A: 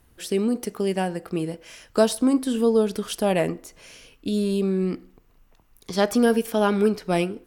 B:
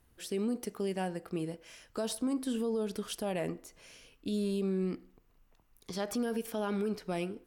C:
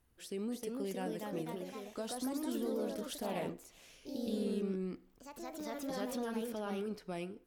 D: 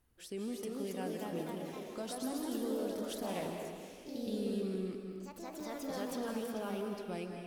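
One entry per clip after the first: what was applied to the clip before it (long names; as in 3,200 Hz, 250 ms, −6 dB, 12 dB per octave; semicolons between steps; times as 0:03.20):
brickwall limiter −17 dBFS, peak gain reduction 10 dB; level −8.5 dB
delay with pitch and tempo change per echo 347 ms, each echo +2 semitones, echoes 3; level −6.5 dB
convolution reverb RT60 1.8 s, pre-delay 145 ms, DRR 3.5 dB; level −1 dB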